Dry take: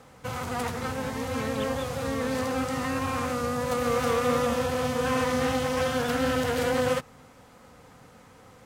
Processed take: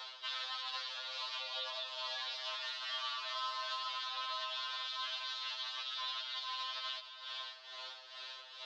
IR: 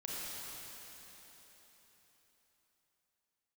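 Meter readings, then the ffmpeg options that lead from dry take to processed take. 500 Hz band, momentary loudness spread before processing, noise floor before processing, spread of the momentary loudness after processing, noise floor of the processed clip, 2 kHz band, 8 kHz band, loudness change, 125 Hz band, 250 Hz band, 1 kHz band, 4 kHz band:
−28.0 dB, 6 LU, −53 dBFS, 7 LU, −53 dBFS, −11.5 dB, −18.5 dB, −12.0 dB, below −40 dB, below −40 dB, −12.5 dB, +1.5 dB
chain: -filter_complex "[0:a]aexciter=amount=13:drive=8.2:freq=3000,asplit=2[link_01][link_02];[1:a]atrim=start_sample=2205,afade=type=out:start_time=0.37:duration=0.01,atrim=end_sample=16758,asetrate=24255,aresample=44100[link_03];[link_02][link_03]afir=irnorm=-1:irlink=0,volume=-18dB[link_04];[link_01][link_04]amix=inputs=2:normalize=0,highpass=frequency=450:width_type=q:width=0.5412,highpass=frequency=450:width_type=q:width=1.307,lowpass=frequency=3500:width_type=q:width=0.5176,lowpass=frequency=3500:width_type=q:width=0.7071,lowpass=frequency=3500:width_type=q:width=1.932,afreqshift=320,tremolo=f=2.3:d=0.66,acompressor=threshold=-45dB:ratio=2,aeval=exprs='val(0)*sin(2*PI*230*n/s)':channel_layout=same,alimiter=level_in=11dB:limit=-24dB:level=0:latency=1:release=115,volume=-11dB,afftfilt=real='re*2.45*eq(mod(b,6),0)':imag='im*2.45*eq(mod(b,6),0)':win_size=2048:overlap=0.75,volume=8dB"

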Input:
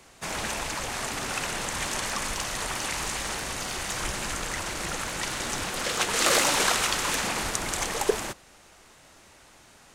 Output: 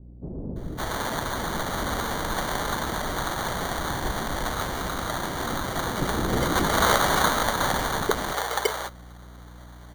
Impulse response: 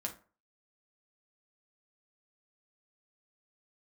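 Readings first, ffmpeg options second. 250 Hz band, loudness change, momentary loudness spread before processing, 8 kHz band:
+7.0 dB, +1.0 dB, 9 LU, −5.0 dB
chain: -filter_complex "[0:a]acrusher=samples=17:mix=1:aa=0.000001,aeval=exprs='val(0)+0.00447*(sin(2*PI*60*n/s)+sin(2*PI*2*60*n/s)/2+sin(2*PI*3*60*n/s)/3+sin(2*PI*4*60*n/s)/4+sin(2*PI*5*60*n/s)/5)':channel_layout=same,acrossover=split=420[link_01][link_02];[link_02]adelay=560[link_03];[link_01][link_03]amix=inputs=2:normalize=0,volume=3.5dB"

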